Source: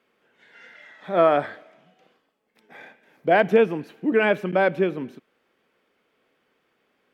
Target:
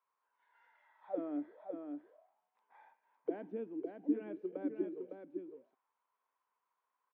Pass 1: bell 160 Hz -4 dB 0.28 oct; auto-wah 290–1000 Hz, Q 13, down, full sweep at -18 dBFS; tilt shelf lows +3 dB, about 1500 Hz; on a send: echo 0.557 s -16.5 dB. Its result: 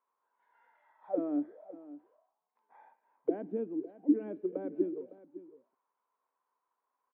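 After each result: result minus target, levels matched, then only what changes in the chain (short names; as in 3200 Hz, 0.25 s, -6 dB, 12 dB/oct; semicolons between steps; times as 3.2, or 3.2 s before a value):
2000 Hz band -8.5 dB; echo-to-direct -11 dB
change: tilt shelf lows -4.5 dB, about 1500 Hz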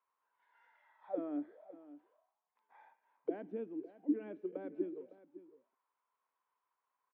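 echo-to-direct -11 dB
change: echo 0.557 s -5.5 dB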